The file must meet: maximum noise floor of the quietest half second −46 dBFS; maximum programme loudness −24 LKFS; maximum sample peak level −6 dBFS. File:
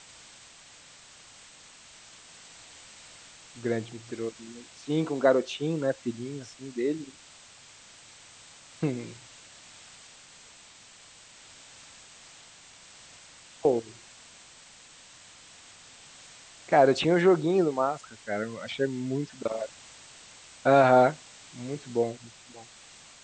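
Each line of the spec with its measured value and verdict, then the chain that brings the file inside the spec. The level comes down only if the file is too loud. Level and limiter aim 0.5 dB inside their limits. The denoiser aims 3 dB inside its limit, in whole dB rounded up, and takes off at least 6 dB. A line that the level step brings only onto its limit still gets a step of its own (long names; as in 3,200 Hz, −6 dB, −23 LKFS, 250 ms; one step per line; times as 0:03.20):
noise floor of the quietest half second −53 dBFS: in spec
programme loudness −27.0 LKFS: in spec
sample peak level −8.0 dBFS: in spec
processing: no processing needed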